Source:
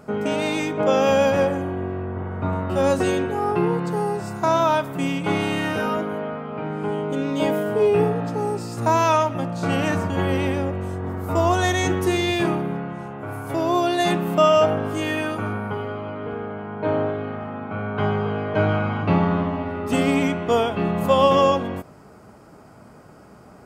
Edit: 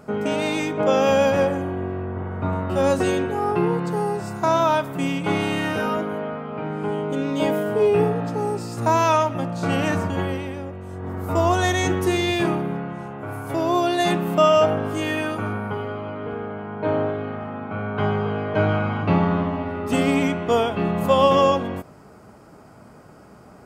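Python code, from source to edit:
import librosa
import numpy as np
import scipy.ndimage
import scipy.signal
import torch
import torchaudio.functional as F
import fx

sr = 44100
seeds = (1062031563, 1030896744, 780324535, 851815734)

y = fx.edit(x, sr, fx.fade_down_up(start_s=10.08, length_s=1.13, db=-8.0, fade_s=0.36), tone=tone)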